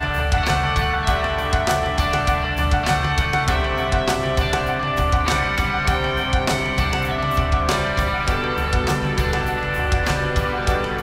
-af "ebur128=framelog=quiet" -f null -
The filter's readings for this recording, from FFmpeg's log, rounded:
Integrated loudness:
  I:         -20.3 LUFS
  Threshold: -30.3 LUFS
Loudness range:
  LRA:         0.9 LU
  Threshold: -40.2 LUFS
  LRA low:   -20.8 LUFS
  LRA high:  -19.9 LUFS